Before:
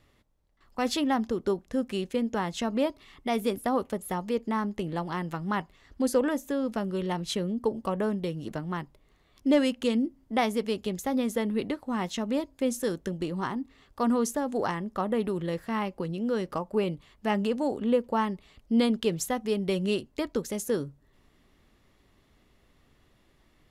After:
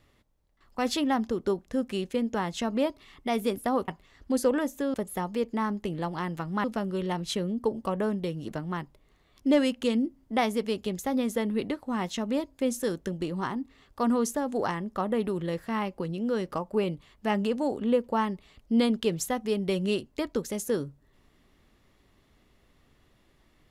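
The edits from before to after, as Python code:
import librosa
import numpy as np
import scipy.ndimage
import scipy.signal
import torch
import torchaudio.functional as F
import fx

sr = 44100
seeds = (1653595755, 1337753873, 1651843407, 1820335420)

y = fx.edit(x, sr, fx.move(start_s=5.58, length_s=1.06, to_s=3.88), tone=tone)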